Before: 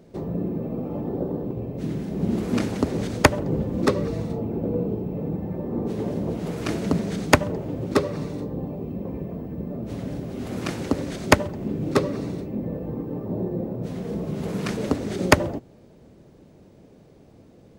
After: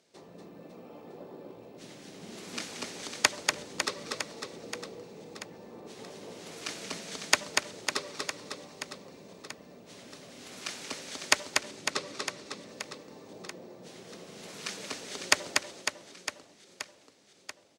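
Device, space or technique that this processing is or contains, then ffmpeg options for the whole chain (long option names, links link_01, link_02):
piezo pickup straight into a mixer: -filter_complex "[0:a]asettb=1/sr,asplit=3[link_01][link_02][link_03];[link_01]atrim=end=11.534[link_04];[link_02]atrim=start=11.53:end=12.45,asetpts=PTS-STARTPTS,afade=type=in:duration=0.004:curve=qsin,afade=type=out:start_time=0.916:duration=0.004:curve=qsin,lowpass=9500[link_05];[link_03]atrim=start=12.446[link_06];[link_04][link_05]acrossfade=duration=0.004:curve1=hsin:curve2=qsin[link_07];[link_07][link_06]acrossfade=duration=0.004:curve1=qsin:curve2=hsin,lowpass=6300,aderivative,aecho=1:1:240|552|957.6|1485|2170:0.631|0.398|0.251|0.158|0.1,volume=5.5dB"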